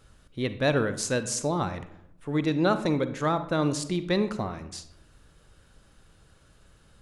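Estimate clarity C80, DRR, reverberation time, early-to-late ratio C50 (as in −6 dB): 15.5 dB, 11.0 dB, 0.80 s, 12.0 dB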